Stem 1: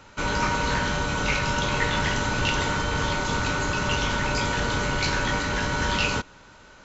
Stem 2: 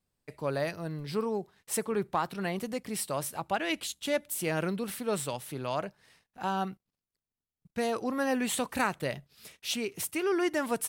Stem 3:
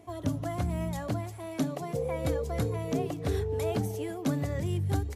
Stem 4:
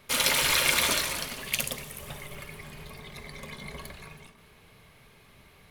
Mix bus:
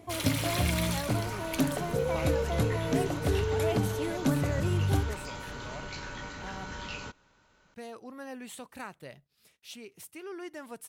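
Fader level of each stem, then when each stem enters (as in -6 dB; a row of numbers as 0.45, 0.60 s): -15.5, -13.0, +2.0, -10.5 dB; 0.90, 0.00, 0.00, 0.00 s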